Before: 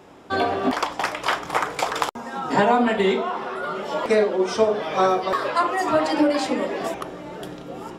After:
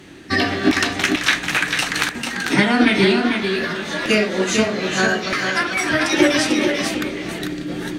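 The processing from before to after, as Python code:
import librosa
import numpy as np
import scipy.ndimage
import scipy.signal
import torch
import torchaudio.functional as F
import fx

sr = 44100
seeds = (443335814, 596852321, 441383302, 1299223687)

p1 = fx.band_shelf(x, sr, hz=660.0, db=-15.5, octaves=1.7)
p2 = fx.rider(p1, sr, range_db=4, speed_s=2.0)
p3 = fx.high_shelf(p2, sr, hz=11000.0, db=-10.5)
p4 = fx.formant_shift(p3, sr, semitones=3)
p5 = p4 + fx.echo_single(p4, sr, ms=444, db=-5.5, dry=0)
y = p5 * librosa.db_to_amplitude(8.0)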